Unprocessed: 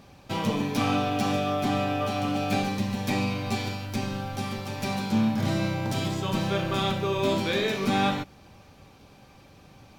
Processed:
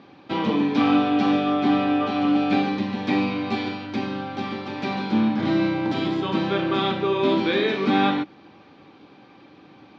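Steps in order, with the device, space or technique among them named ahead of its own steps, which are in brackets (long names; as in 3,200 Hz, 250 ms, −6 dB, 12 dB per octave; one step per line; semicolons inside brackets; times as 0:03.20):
kitchen radio (loudspeaker in its box 210–3,900 Hz, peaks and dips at 310 Hz +9 dB, 610 Hz −5 dB, 2,700 Hz −3 dB)
level +4.5 dB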